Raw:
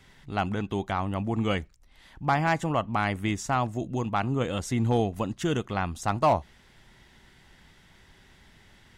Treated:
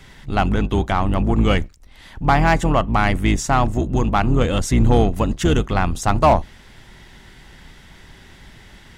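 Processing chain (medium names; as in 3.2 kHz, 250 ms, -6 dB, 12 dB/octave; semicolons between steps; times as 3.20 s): octave divider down 2 oct, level +1 dB; in parallel at -4.5 dB: saturation -28 dBFS, distortion -7 dB; on the sum: trim +6.5 dB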